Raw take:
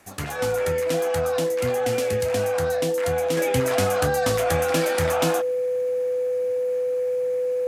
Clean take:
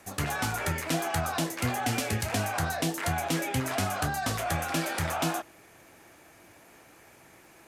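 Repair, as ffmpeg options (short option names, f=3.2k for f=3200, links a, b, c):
-af "bandreject=f=500:w=30,asetnsamples=n=441:p=0,asendcmd='3.37 volume volume -5dB',volume=0dB"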